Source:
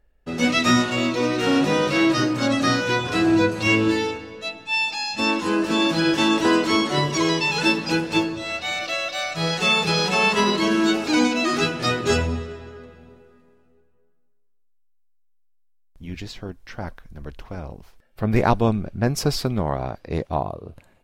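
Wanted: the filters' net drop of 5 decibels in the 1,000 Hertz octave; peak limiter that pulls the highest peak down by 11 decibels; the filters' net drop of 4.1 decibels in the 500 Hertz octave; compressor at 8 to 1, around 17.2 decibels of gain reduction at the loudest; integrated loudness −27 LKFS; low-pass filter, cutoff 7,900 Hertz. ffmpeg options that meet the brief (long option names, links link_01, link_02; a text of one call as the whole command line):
ffmpeg -i in.wav -af "lowpass=7900,equalizer=frequency=500:width_type=o:gain=-4.5,equalizer=frequency=1000:width_type=o:gain=-5,acompressor=threshold=-33dB:ratio=8,volume=13.5dB,alimiter=limit=-19dB:level=0:latency=1" out.wav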